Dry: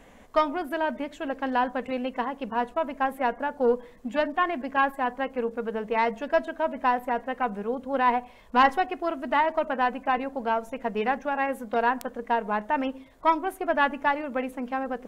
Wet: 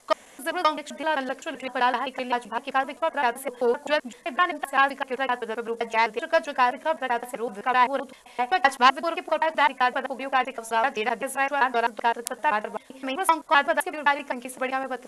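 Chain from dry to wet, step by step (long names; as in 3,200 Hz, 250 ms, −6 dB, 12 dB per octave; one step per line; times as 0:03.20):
slices reordered back to front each 129 ms, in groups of 3
elliptic low-pass filter 11,000 Hz, stop band 70 dB
RIAA equalisation recording
level +3.5 dB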